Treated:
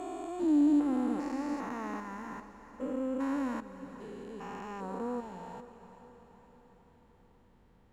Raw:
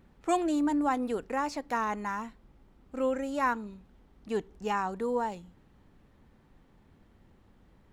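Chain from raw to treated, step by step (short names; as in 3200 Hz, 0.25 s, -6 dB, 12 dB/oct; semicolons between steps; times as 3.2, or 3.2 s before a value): stepped spectrum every 0.4 s; diffused feedback echo 0.464 s, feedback 55%, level -12.5 dB; dynamic EQ 280 Hz, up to +8 dB, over -48 dBFS, Q 2.8; gain -2.5 dB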